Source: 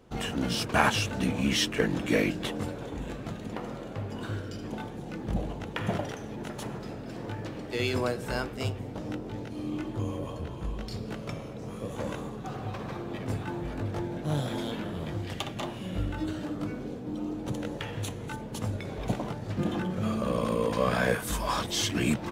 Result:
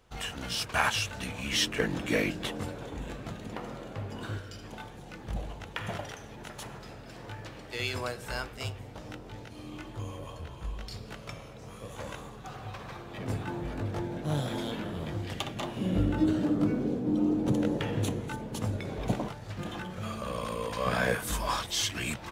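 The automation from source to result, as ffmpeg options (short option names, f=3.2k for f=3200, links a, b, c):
-af "asetnsamples=n=441:p=0,asendcmd='1.53 equalizer g -4;4.38 equalizer g -11;13.17 equalizer g -1.5;15.77 equalizer g 8;18.2 equalizer g 0.5;19.28 equalizer g -11;20.86 equalizer g -3.5;21.56 equalizer g -12.5',equalizer=f=260:t=o:w=2.5:g=-13.5"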